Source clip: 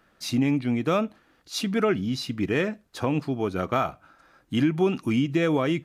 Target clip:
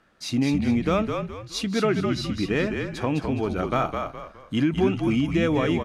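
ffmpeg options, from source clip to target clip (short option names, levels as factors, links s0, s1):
-filter_complex "[0:a]lowpass=10000,asplit=2[s0][s1];[s1]asplit=4[s2][s3][s4][s5];[s2]adelay=208,afreqshift=-49,volume=0.562[s6];[s3]adelay=416,afreqshift=-98,volume=0.191[s7];[s4]adelay=624,afreqshift=-147,volume=0.0653[s8];[s5]adelay=832,afreqshift=-196,volume=0.0221[s9];[s6][s7][s8][s9]amix=inputs=4:normalize=0[s10];[s0][s10]amix=inputs=2:normalize=0"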